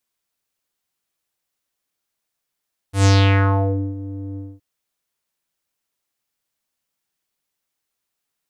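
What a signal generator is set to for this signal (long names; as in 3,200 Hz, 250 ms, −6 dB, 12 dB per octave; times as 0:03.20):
subtractive voice square G2 12 dB per octave, low-pass 350 Hz, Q 3, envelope 5 octaves, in 0.86 s, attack 118 ms, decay 0.90 s, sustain −19.5 dB, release 0.23 s, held 1.44 s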